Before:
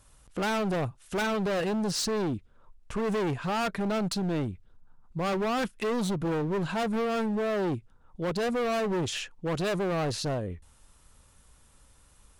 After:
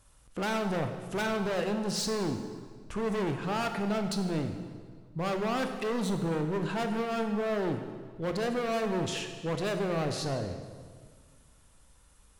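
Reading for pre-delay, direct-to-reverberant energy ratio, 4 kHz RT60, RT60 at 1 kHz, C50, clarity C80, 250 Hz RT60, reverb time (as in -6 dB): 19 ms, 6.0 dB, 1.4 s, 1.6 s, 7.0 dB, 8.5 dB, 2.1 s, 1.7 s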